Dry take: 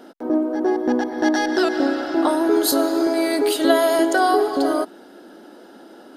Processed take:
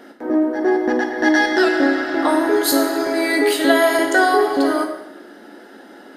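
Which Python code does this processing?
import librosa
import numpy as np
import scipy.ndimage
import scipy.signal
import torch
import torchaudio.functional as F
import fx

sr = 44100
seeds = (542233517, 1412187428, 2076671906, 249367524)

y = fx.peak_eq(x, sr, hz=1900.0, db=10.0, octaves=0.54)
y = fx.rev_plate(y, sr, seeds[0], rt60_s=0.82, hf_ratio=0.85, predelay_ms=0, drr_db=3.0)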